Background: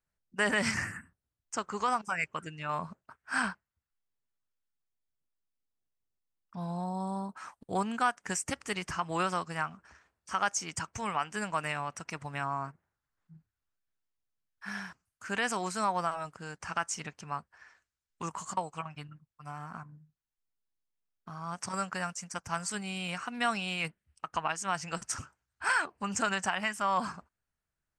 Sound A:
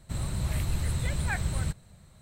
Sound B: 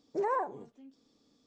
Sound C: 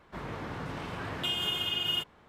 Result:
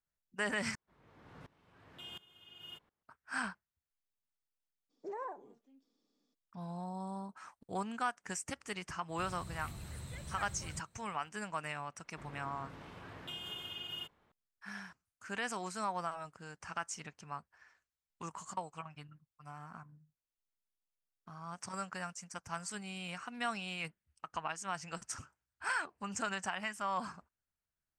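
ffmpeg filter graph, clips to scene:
-filter_complex "[3:a]asplit=2[a][b];[0:a]volume=-7dB[c];[a]aeval=exprs='val(0)*pow(10,-22*if(lt(mod(-1.4*n/s,1),2*abs(-1.4)/1000),1-mod(-1.4*n/s,1)/(2*abs(-1.4)/1000),(mod(-1.4*n/s,1)-2*abs(-1.4)/1000)/(1-2*abs(-1.4)/1000))/20)':c=same[d];[2:a]highpass=f=180:w=0.5412,highpass=f=180:w=1.3066[e];[1:a]highpass=f=110:p=1[f];[c]asplit=2[g][h];[g]atrim=end=0.754[i];[d]atrim=end=2.28,asetpts=PTS-STARTPTS,volume=-14dB[j];[h]atrim=start=3.026[k];[e]atrim=end=1.46,asetpts=PTS-STARTPTS,volume=-11.5dB,afade=t=in:d=0.02,afade=t=out:st=1.44:d=0.02,adelay=215649S[l];[f]atrim=end=2.21,asetpts=PTS-STARTPTS,volume=-13dB,afade=t=in:d=0.004:c=hsin,afade=t=out:st=2.206:d=0.004:c=hsin,adelay=9080[m];[b]atrim=end=2.28,asetpts=PTS-STARTPTS,volume=-13dB,afade=t=in:d=0.004:c=hsin,afade=t=out:st=2.276:d=0.004:c=hsin,adelay=12040[n];[i][j]acrossfade=d=0.004:c1=hsin:c2=hsin[o];[o][k]acrossfade=d=0.004:c1=hsin:c2=hsin[p];[p][l][m][n]amix=inputs=4:normalize=0"

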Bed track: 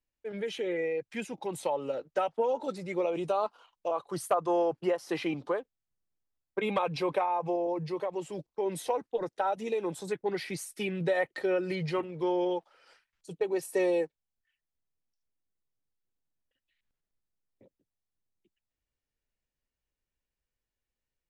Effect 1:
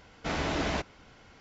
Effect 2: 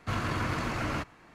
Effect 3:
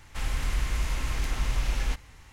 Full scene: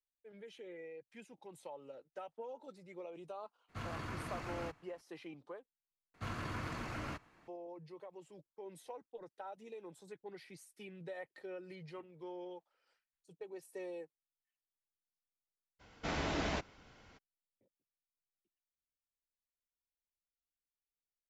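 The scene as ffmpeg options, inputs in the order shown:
-filter_complex "[2:a]asplit=2[a][b];[0:a]volume=-18dB[c];[b]acompressor=mode=upward:threshold=-58dB:ratio=2.5:attack=3.2:release=140:knee=2.83:detection=peak[d];[c]asplit=2[e][f];[e]atrim=end=6.144[g];[d]atrim=end=1.34,asetpts=PTS-STARTPTS,volume=-10.5dB[h];[f]atrim=start=7.476[i];[a]atrim=end=1.34,asetpts=PTS-STARTPTS,volume=-12.5dB,afade=t=in:d=0.02,afade=t=out:st=1.32:d=0.02,adelay=3680[j];[1:a]atrim=end=1.4,asetpts=PTS-STARTPTS,volume=-6dB,afade=t=in:d=0.02,afade=t=out:st=1.38:d=0.02,adelay=15790[k];[g][h]acrossfade=d=0.004:c1=hsin:c2=hsin[l];[l][i]acrossfade=d=0.004:c1=hsin:c2=hsin[m];[m][j][k]amix=inputs=3:normalize=0"

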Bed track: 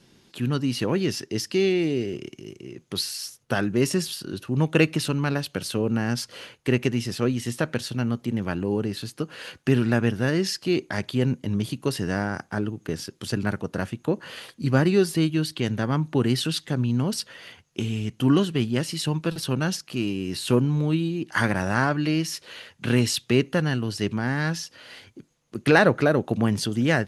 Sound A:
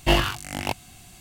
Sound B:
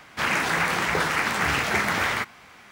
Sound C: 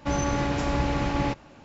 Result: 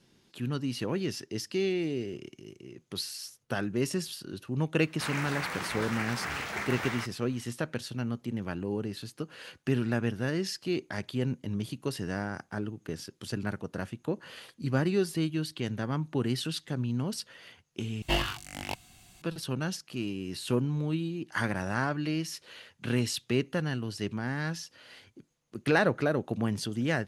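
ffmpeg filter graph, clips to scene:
-filter_complex "[0:a]volume=-7.5dB[a];[1:a]equalizer=f=3.4k:w=0.56:g=3[b];[a]asplit=2[c][d];[c]atrim=end=18.024[e];[b]atrim=end=1.2,asetpts=PTS-STARTPTS,volume=-9.5dB[f];[d]atrim=start=19.216[g];[2:a]atrim=end=2.71,asetpts=PTS-STARTPTS,volume=-11.5dB,afade=t=in:d=0.004:c=hsin,afade=t=out:st=2.706:d=0.004:c=hsin,adelay=4820[h];[e][f]acrossfade=d=0.004:c1=hsin:c2=hsin[i];[i][g]acrossfade=d=0.004:c1=hsin:c2=hsin[j];[j][h]amix=inputs=2:normalize=0"

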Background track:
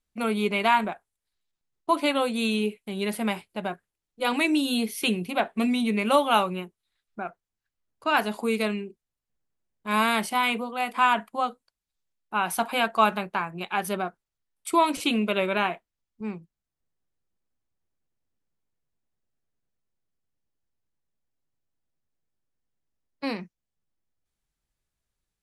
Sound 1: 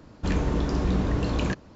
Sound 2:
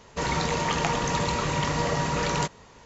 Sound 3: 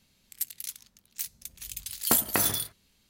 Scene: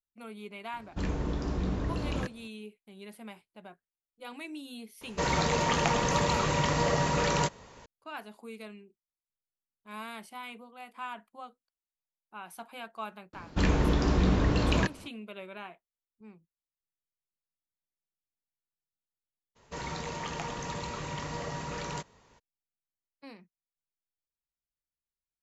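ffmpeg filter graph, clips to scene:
-filter_complex "[1:a]asplit=2[a][b];[2:a]asplit=2[c][d];[0:a]volume=-18.5dB[e];[c]equalizer=f=550:t=o:w=0.27:g=3.5[f];[b]equalizer=f=2.8k:t=o:w=2.7:g=4[g];[d]acontrast=57[h];[a]atrim=end=1.75,asetpts=PTS-STARTPTS,volume=-7dB,afade=t=in:d=0.004:c=hsin,afade=t=out:st=1.746:d=0.004:c=hsin,adelay=730[i];[f]atrim=end=2.85,asetpts=PTS-STARTPTS,volume=-1.5dB,afade=t=in:d=0.004:c=hsin,afade=t=out:st=2.846:d=0.004:c=hsin,adelay=220941S[j];[g]atrim=end=1.75,asetpts=PTS-STARTPTS,volume=-0.5dB,afade=t=in:d=0.004:c=hsin,afade=t=out:st=1.746:d=0.004:c=hsin,adelay=13330[k];[h]atrim=end=2.85,asetpts=PTS-STARTPTS,volume=-17dB,afade=t=in:d=0.02,afade=t=out:st=2.83:d=0.02,adelay=19550[l];[e][i][j][k][l]amix=inputs=5:normalize=0"

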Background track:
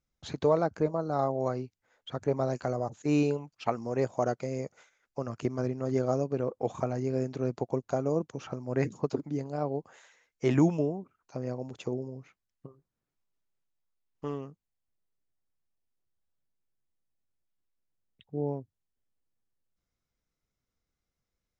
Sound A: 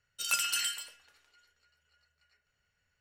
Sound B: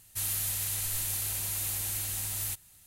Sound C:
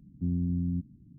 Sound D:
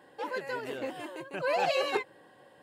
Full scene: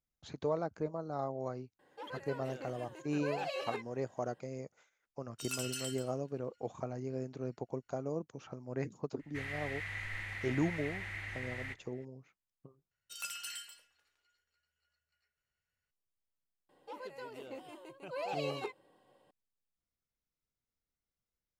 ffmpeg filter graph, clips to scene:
-filter_complex "[4:a]asplit=2[a][b];[1:a]asplit=2[c][d];[0:a]volume=-9dB[e];[c]equalizer=f=6.7k:w=0.63:g=5.5[f];[2:a]lowpass=f=2k:t=q:w=8.4[g];[b]equalizer=f=1.7k:t=o:w=0.27:g=-12.5[h];[e]asplit=2[i][j];[i]atrim=end=12.914[k];[d]atrim=end=3,asetpts=PTS-STARTPTS,volume=-12dB[l];[j]atrim=start=15.906[m];[a]atrim=end=2.62,asetpts=PTS-STARTPTS,volume=-10.5dB,afade=t=in:d=0.004:c=hsin,afade=t=out:st=2.616:d=0.004:c=hsin,adelay=1790[n];[f]atrim=end=3,asetpts=PTS-STARTPTS,volume=-13.5dB,afade=t=in:d=0.004:c=hsin,afade=t=out:st=2.996:d=0.004:c=hsin,adelay=5200[o];[g]atrim=end=2.86,asetpts=PTS-STARTPTS,volume=-5.5dB,afade=t=in:d=0.004:c=hsin,afade=t=out:st=2.856:d=0.004:c=hsin,adelay=9190[p];[h]atrim=end=2.62,asetpts=PTS-STARTPTS,volume=-10dB,afade=t=in:d=0.004:c=hsin,afade=t=out:st=2.616:d=0.004:c=hsin,adelay=16690[q];[k][l]acrossfade=d=0.004:c1=hsin:c2=hsin[r];[r][m]acrossfade=d=0.004:c1=hsin:c2=hsin[s];[s][n][o][p][q]amix=inputs=5:normalize=0"

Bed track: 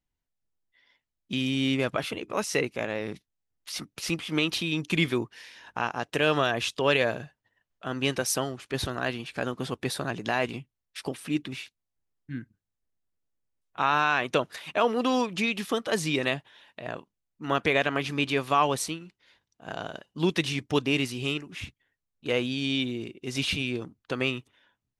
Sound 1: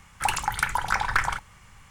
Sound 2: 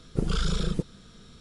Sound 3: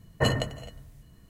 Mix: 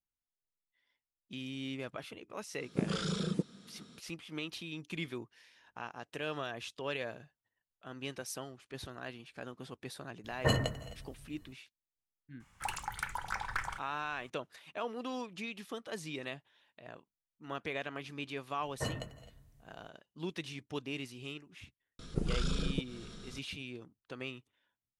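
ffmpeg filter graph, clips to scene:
-filter_complex "[2:a]asplit=2[a][b];[3:a]asplit=2[c][d];[0:a]volume=-14.5dB[e];[a]highpass=f=200:t=q:w=1.5[f];[b]acompressor=mode=upward:threshold=-31dB:ratio=2.5:attack=3.2:release=140:knee=2.83:detection=peak[g];[f]atrim=end=1.4,asetpts=PTS-STARTPTS,volume=-5.5dB,afade=t=in:d=0.004:c=hsin,afade=t=out:st=1.396:d=0.004:c=hsin,adelay=2600[h];[c]atrim=end=1.29,asetpts=PTS-STARTPTS,volume=-4.5dB,afade=t=in:d=0.004:c=hsin,afade=t=out:st=1.286:d=0.004:c=hsin,adelay=10240[i];[1:a]atrim=end=1.9,asetpts=PTS-STARTPTS,volume=-13dB,afade=t=in:d=0.004:c=hsin,afade=t=out:st=1.896:d=0.004:c=hsin,adelay=12400[j];[d]atrim=end=1.29,asetpts=PTS-STARTPTS,volume=-13dB,afade=t=in:d=0.004:c=hsin,afade=t=out:st=1.286:d=0.004:c=hsin,adelay=820260S[k];[g]atrim=end=1.4,asetpts=PTS-STARTPTS,volume=-7dB,afade=t=in:d=0.004:c=hsin,afade=t=out:st=1.396:d=0.004:c=hsin,adelay=21990[l];[e][h][i][j][k][l]amix=inputs=6:normalize=0"

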